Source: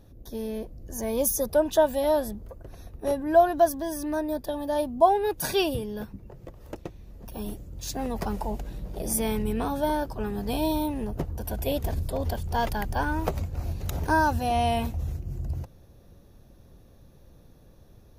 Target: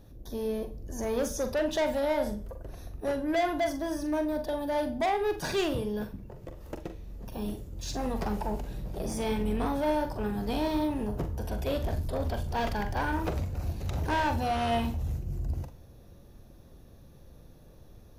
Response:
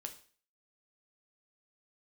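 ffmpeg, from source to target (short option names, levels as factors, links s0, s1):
-filter_complex "[0:a]acrossover=split=6500[s0][s1];[s1]acompressor=threshold=0.00282:ratio=4:attack=1:release=60[s2];[s0][s2]amix=inputs=2:normalize=0,asoftclip=type=tanh:threshold=0.0596,asplit=2[s3][s4];[1:a]atrim=start_sample=2205,adelay=43[s5];[s4][s5]afir=irnorm=-1:irlink=0,volume=0.631[s6];[s3][s6]amix=inputs=2:normalize=0"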